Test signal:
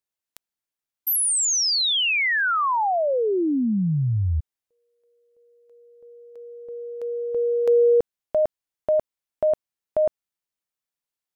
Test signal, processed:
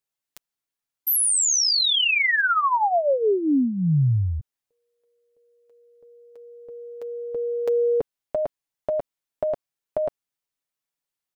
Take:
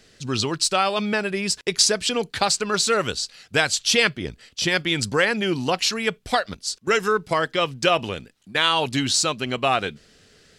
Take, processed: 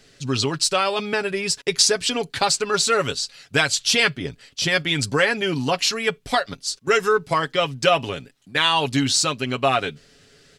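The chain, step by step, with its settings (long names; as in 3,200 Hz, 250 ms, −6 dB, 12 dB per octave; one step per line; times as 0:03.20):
comb filter 7.2 ms, depth 52%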